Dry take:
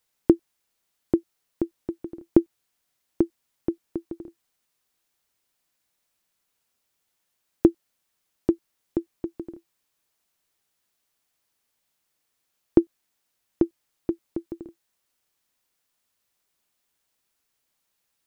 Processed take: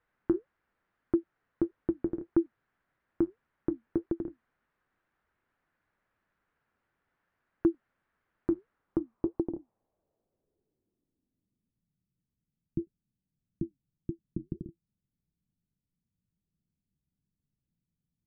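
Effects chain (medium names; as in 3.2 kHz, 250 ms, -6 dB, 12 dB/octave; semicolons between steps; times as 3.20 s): bass shelf 410 Hz +8 dB; peak limiter -16 dBFS, peak gain reduction 17.5 dB; flange 1.7 Hz, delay 1.8 ms, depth 9.7 ms, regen -64%; low-pass sweep 1.6 kHz -> 170 Hz, 8.64–11.94 s; trim +3.5 dB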